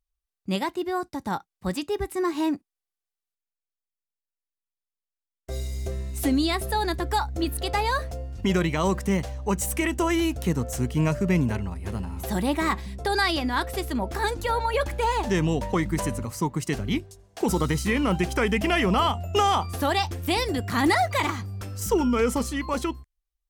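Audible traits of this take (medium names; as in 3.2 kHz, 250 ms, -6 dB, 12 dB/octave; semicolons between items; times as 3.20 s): noise floor -90 dBFS; spectral tilt -5.0 dB/octave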